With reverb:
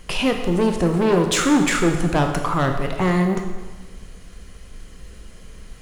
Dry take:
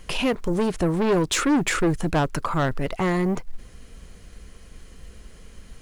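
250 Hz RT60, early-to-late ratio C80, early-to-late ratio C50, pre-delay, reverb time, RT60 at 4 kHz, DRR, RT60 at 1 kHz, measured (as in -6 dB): 1.3 s, 8.0 dB, 6.0 dB, 7 ms, 1.3 s, 1.2 s, 4.0 dB, 1.3 s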